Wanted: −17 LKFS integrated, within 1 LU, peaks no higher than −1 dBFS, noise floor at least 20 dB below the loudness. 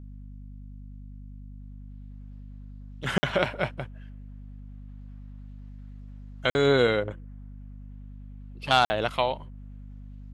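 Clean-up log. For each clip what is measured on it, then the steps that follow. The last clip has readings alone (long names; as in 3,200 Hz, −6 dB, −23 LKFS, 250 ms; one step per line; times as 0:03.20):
number of dropouts 3; longest dropout 50 ms; mains hum 50 Hz; hum harmonics up to 250 Hz; level of the hum −40 dBFS; integrated loudness −26.0 LKFS; sample peak −4.5 dBFS; target loudness −17.0 LKFS
→ repair the gap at 0:03.18/0:06.50/0:08.85, 50 ms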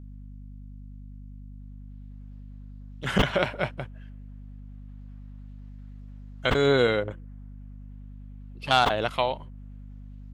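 number of dropouts 0; mains hum 50 Hz; hum harmonics up to 250 Hz; level of the hum −40 dBFS
→ mains-hum notches 50/100/150/200/250 Hz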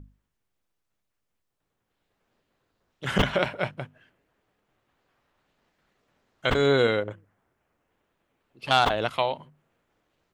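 mains hum none found; integrated loudness −25.0 LKFS; sample peak −4.5 dBFS; target loudness −17.0 LKFS
→ level +8 dB
brickwall limiter −1 dBFS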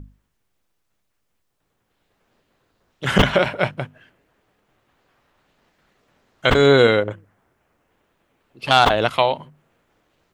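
integrated loudness −17.5 LKFS; sample peak −1.0 dBFS; background noise floor −72 dBFS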